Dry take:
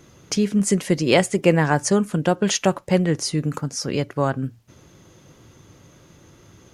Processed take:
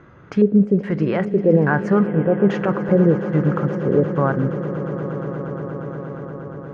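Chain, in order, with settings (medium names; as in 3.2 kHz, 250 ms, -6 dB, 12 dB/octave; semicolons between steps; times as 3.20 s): peak limiter -13 dBFS, peak gain reduction 9.5 dB; harmonic-percussive split percussive -6 dB; LFO low-pass square 1.2 Hz 480–1500 Hz; echo with a slow build-up 118 ms, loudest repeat 8, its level -18 dB; spectral selection erased 2.07–2.50 s, 3.5–7.4 kHz; trim +4.5 dB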